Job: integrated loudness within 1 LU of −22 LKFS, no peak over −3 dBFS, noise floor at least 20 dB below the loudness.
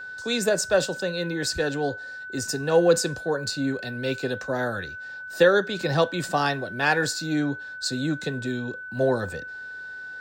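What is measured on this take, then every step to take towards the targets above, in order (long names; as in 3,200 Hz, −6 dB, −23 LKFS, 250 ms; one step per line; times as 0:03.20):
interfering tone 1,500 Hz; level of the tone −35 dBFS; integrated loudness −25.0 LKFS; sample peak −7.0 dBFS; target loudness −22.0 LKFS
→ notch filter 1,500 Hz, Q 30
level +3 dB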